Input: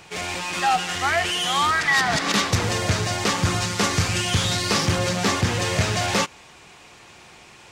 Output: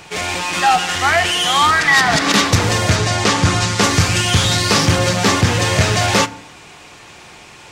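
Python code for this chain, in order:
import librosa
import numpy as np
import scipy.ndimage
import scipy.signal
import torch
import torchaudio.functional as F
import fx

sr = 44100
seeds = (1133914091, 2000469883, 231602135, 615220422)

y = fx.lowpass(x, sr, hz=9600.0, slope=12, at=(2.96, 3.82))
y = fx.rev_fdn(y, sr, rt60_s=0.73, lf_ratio=1.1, hf_ratio=0.45, size_ms=20.0, drr_db=14.0)
y = y * librosa.db_to_amplitude(7.0)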